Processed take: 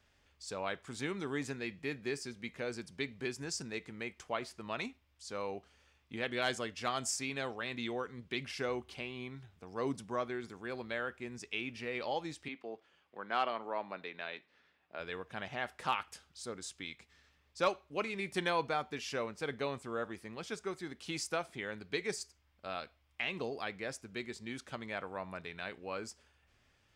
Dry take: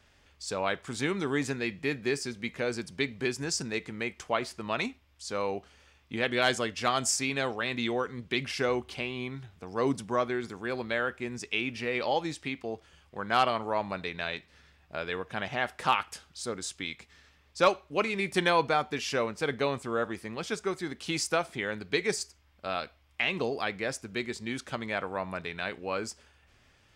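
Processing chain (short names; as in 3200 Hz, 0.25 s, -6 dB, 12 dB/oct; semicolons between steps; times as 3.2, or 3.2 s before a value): 12.48–15 three-band isolator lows -21 dB, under 200 Hz, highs -13 dB, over 4200 Hz; gain -8 dB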